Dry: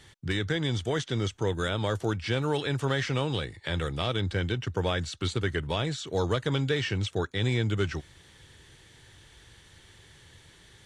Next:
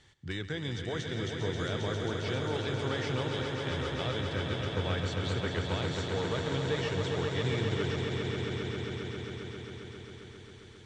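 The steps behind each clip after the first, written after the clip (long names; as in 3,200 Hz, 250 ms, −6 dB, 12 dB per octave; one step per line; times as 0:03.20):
low-pass filter 7,900 Hz 24 dB per octave
on a send: echo that builds up and dies away 134 ms, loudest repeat 5, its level −7 dB
on the sum: level −7.5 dB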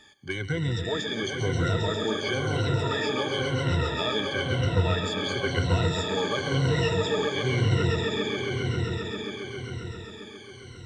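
rippled gain that drifts along the octave scale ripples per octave 2, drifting −0.98 Hz, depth 23 dB
in parallel at −12 dB: soft clipping −25 dBFS, distortion −12 dB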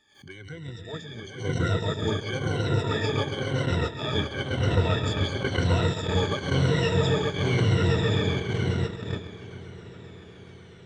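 echo whose low-pass opens from repeat to repeat 430 ms, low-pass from 200 Hz, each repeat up 1 octave, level −3 dB
noise gate −24 dBFS, range −12 dB
background raised ahead of every attack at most 110 dB per second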